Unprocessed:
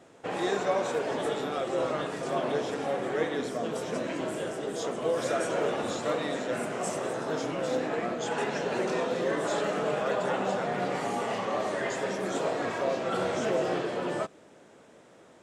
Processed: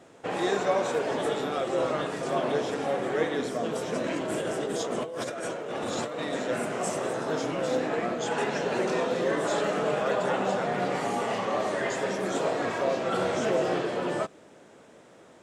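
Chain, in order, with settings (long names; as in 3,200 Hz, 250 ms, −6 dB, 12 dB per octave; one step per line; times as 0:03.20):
0:04.04–0:06.33: compressor whose output falls as the input rises −34 dBFS, ratio −1
level +2 dB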